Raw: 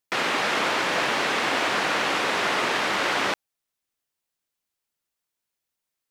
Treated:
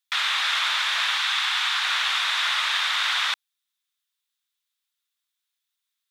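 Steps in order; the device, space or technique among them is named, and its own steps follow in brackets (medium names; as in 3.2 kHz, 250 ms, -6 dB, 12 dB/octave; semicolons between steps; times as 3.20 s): 1.18–1.83 s: Chebyshev high-pass 730 Hz, order 8; headphones lying on a table (high-pass 1.1 kHz 24 dB/octave; peaking EQ 3.6 kHz +11 dB 0.34 oct)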